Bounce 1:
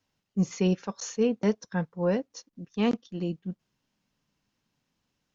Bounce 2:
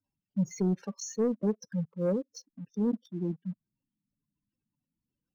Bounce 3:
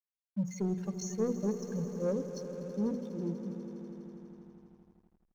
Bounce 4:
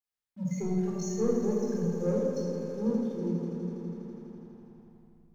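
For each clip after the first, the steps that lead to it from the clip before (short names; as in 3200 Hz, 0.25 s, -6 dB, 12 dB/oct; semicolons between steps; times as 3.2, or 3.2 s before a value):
spectral gate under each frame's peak -10 dB strong; sample leveller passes 1; gain -4.5 dB
notches 60/120/180/240/300/360/420/480 Hz; swelling echo 82 ms, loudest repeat 5, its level -15 dB; backlash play -49.5 dBFS; gain -3 dB
shoebox room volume 1600 m³, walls mixed, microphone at 4 m; gain -3.5 dB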